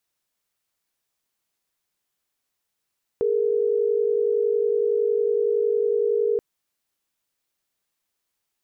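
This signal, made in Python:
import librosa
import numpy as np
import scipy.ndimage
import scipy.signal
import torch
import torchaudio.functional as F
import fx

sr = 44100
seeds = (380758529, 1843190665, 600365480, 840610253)

y = fx.chord(sr, length_s=3.18, notes=(68, 70), wave='sine', level_db=-21.5)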